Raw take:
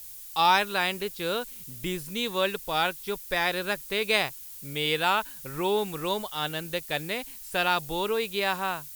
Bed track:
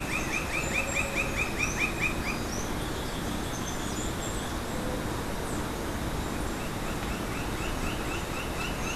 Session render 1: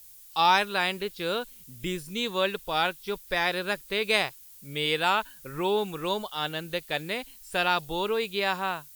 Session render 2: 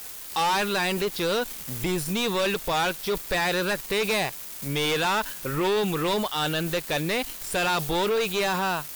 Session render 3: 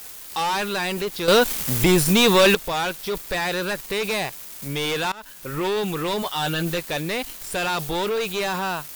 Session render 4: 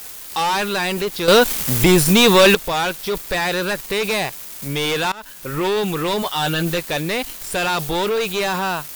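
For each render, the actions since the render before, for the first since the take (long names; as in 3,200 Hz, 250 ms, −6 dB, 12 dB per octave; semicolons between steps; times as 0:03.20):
noise reduction from a noise print 7 dB
leveller curve on the samples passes 5; brickwall limiter −20.5 dBFS, peak gain reduction 11 dB
0:01.28–0:02.55: clip gain +10 dB; 0:05.12–0:05.60: fade in linear, from −23 dB; 0:06.21–0:06.83: double-tracking delay 12 ms −4 dB
level +4 dB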